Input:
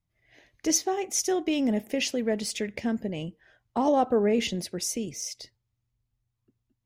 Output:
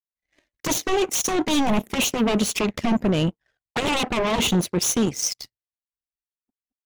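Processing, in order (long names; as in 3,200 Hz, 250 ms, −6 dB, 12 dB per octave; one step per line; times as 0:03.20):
sine wavefolder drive 15 dB, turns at −12 dBFS
flanger swept by the level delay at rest 4.2 ms, full sweep at −14 dBFS
power curve on the samples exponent 2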